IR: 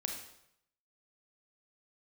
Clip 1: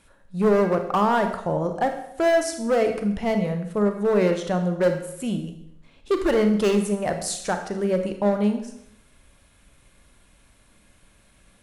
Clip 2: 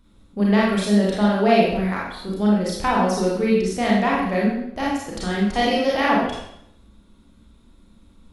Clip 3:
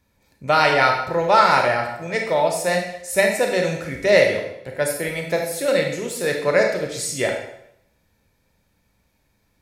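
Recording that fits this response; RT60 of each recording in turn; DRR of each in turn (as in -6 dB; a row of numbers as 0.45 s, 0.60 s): 3; 0.75 s, 0.75 s, 0.75 s; 6.0 dB, -5.5 dB, 2.0 dB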